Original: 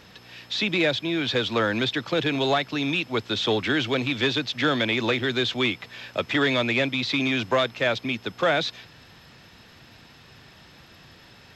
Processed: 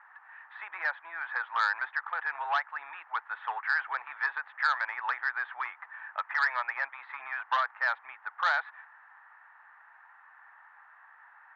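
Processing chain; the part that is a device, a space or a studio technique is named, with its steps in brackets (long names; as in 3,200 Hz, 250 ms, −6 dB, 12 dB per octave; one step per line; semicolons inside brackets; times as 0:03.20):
elliptic band-pass filter 840–1,800 Hz, stop band 80 dB
public-address speaker with an overloaded transformer (saturating transformer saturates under 1,900 Hz; band-pass filter 260–5,600 Hz)
level +2 dB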